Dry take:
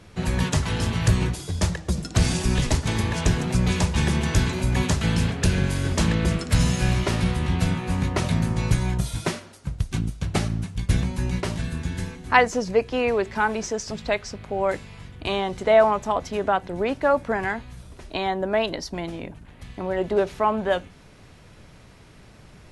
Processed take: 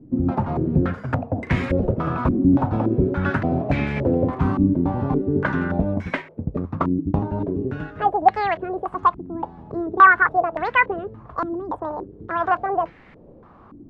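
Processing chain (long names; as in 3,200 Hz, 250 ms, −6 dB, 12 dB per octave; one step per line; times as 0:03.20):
gliding playback speed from 141% → 186%
low-pass on a step sequencer 3.5 Hz 300–2,000 Hz
level −1 dB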